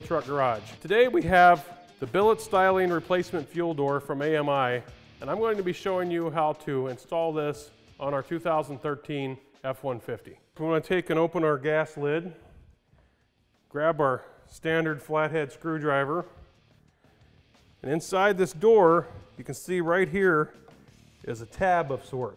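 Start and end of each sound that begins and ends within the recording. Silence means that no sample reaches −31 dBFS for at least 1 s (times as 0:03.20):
0:13.75–0:16.21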